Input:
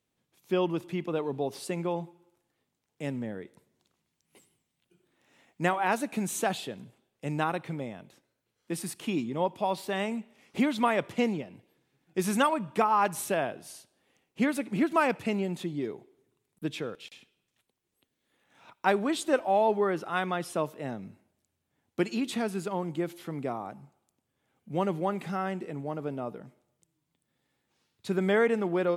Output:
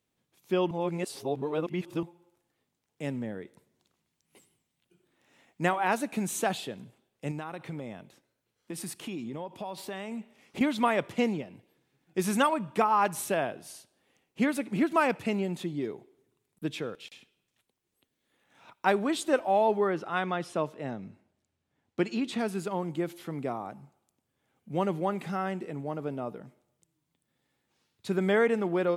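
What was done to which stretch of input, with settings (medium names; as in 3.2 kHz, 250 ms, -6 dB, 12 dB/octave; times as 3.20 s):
0.71–2.03 s: reverse
7.31–10.61 s: compression, threshold -33 dBFS
19.88–22.39 s: distance through air 54 m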